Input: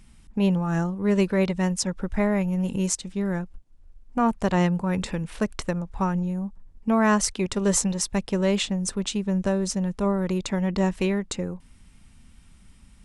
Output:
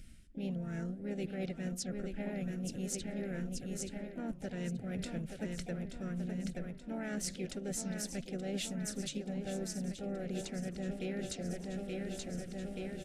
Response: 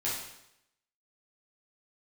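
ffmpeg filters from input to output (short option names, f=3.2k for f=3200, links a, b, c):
-filter_complex "[0:a]aecho=1:1:878|1756|2634|3512|4390|5268|6146:0.335|0.191|0.109|0.062|0.0354|0.0202|0.0115,areverse,acompressor=threshold=-34dB:ratio=6,areverse,asuperstop=centerf=960:order=12:qfactor=1.5,asplit=4[a][b][c][d];[b]asetrate=37084,aresample=44100,atempo=1.18921,volume=-15dB[e];[c]asetrate=55563,aresample=44100,atempo=0.793701,volume=-15dB[f];[d]asetrate=58866,aresample=44100,atempo=0.749154,volume=-11dB[g];[a][e][f][g]amix=inputs=4:normalize=0,flanger=delay=2.1:depth=8.1:regen=-89:speed=1.7:shape=sinusoidal,volume=1.5dB"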